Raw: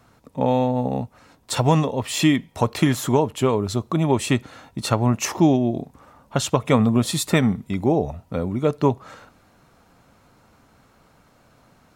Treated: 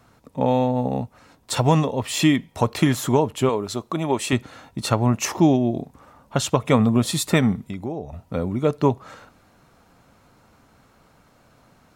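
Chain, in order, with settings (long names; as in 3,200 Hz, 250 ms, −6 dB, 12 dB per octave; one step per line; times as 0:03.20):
0:03.49–0:04.33: parametric band 80 Hz −11.5 dB 2.6 octaves
0:07.66–0:08.13: downward compressor 2.5 to 1, threshold −31 dBFS, peak gain reduction 11.5 dB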